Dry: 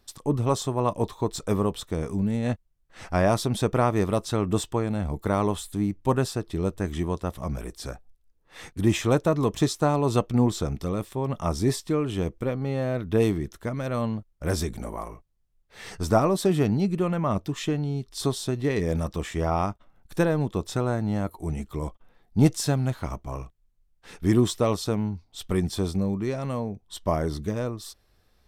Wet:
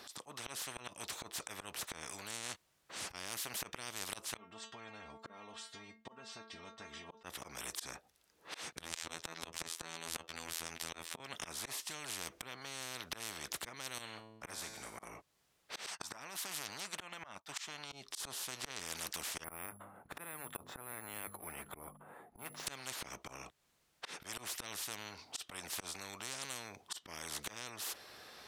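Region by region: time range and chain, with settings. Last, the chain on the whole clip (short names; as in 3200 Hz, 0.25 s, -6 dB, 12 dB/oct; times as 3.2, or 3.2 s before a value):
4.37–7.24 compressor 2.5:1, threshold -30 dBFS + air absorption 140 m + metallic resonator 220 Hz, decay 0.25 s, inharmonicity 0.002
8.77–11.2 high shelf 8400 Hz -4 dB + robotiser 82.8 Hz
13.98–15.03 resonator 110 Hz, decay 0.77 s, mix 70% + upward expander, over -44 dBFS
15.86–17.92 resonant low shelf 630 Hz -12 dB, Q 3 + compressor 4:1, threshold -33 dBFS + expander -37 dBFS
19.44–22.67 LPF 1200 Hz + notches 50/100/150/200/250 Hz + careless resampling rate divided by 4×, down none, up hold
whole clip: weighting filter A; auto swell 0.405 s; spectral compressor 10:1; gain +1.5 dB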